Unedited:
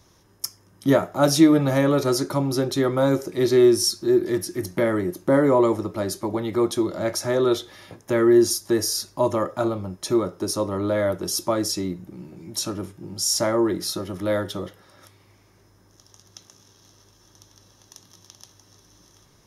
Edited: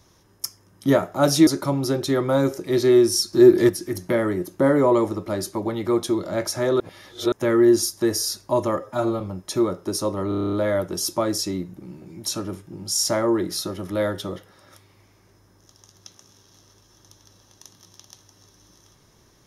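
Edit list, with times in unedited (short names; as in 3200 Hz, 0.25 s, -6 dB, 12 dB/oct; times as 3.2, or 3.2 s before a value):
1.47–2.15 cut
4.01–4.37 gain +7 dB
7.48–8 reverse
9.48–9.75 stretch 1.5×
10.83 stutter 0.03 s, 9 plays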